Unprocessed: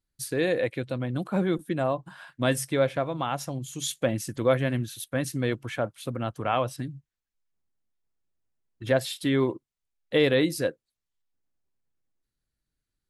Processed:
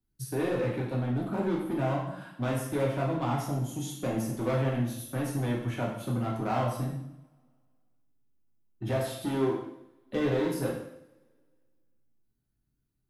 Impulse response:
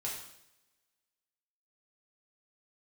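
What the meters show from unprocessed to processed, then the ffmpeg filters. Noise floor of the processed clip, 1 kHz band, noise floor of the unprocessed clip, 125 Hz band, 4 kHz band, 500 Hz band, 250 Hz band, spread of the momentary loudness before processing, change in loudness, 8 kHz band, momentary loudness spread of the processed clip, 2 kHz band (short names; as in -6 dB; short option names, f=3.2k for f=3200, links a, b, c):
-78 dBFS, -2.0 dB, under -85 dBFS, +0.5 dB, -10.0 dB, -5.0 dB, -1.5 dB, 8 LU, -3.5 dB, -7.5 dB, 7 LU, -7.5 dB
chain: -filter_complex "[0:a]equalizer=f=250:t=o:w=1:g=10,equalizer=f=500:t=o:w=1:g=-6,equalizer=f=1k:t=o:w=1:g=-3,equalizer=f=2k:t=o:w=1:g=-8,equalizer=f=4k:t=o:w=1:g=-8,equalizer=f=8k:t=o:w=1:g=-9,acrossover=split=160|380|1600[a][b][c][d];[a]acompressor=threshold=-40dB:ratio=4[e];[b]acompressor=threshold=-40dB:ratio=4[f];[c]acompressor=threshold=-25dB:ratio=4[g];[d]acompressor=threshold=-46dB:ratio=4[h];[e][f][g][h]amix=inputs=4:normalize=0,asplit=2[i][j];[j]aeval=exprs='0.0282*(abs(mod(val(0)/0.0282+3,4)-2)-1)':c=same,volume=-5dB[k];[i][k]amix=inputs=2:normalize=0[l];[1:a]atrim=start_sample=2205[m];[l][m]afir=irnorm=-1:irlink=0"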